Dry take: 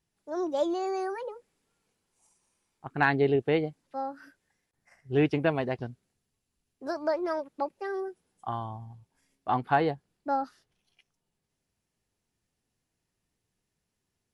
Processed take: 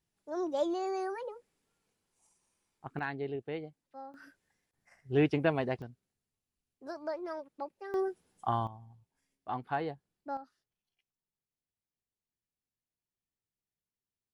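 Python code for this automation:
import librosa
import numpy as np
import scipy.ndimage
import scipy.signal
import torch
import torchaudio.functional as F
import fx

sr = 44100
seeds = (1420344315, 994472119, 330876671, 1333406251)

y = fx.gain(x, sr, db=fx.steps((0.0, -3.5), (2.99, -13.0), (4.14, -2.5), (5.82, -9.0), (7.94, 2.5), (8.67, -9.5), (10.37, -17.0)))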